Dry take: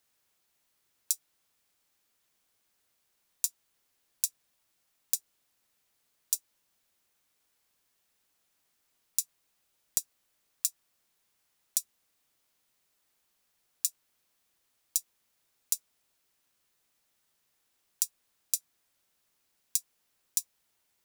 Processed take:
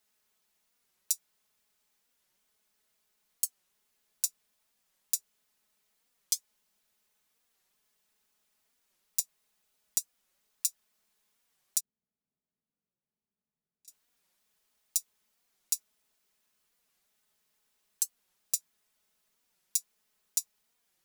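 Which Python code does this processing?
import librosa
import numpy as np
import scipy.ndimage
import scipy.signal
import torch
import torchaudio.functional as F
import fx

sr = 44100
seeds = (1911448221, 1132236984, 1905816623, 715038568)

y = fx.bandpass_q(x, sr, hz=140.0, q=1.2, at=(11.8, 13.88))
y = y + 0.81 * np.pad(y, (int(4.7 * sr / 1000.0), 0))[:len(y)]
y = fx.record_warp(y, sr, rpm=45.0, depth_cents=250.0)
y = F.gain(torch.from_numpy(y), -3.0).numpy()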